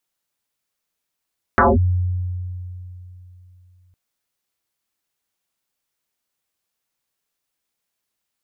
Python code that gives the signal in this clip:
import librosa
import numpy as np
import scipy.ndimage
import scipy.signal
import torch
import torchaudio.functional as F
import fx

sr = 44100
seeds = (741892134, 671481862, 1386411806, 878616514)

y = fx.fm2(sr, length_s=2.36, level_db=-9.0, carrier_hz=90.3, ratio=1.71, index=11.0, index_s=0.2, decay_s=3.21, shape='linear')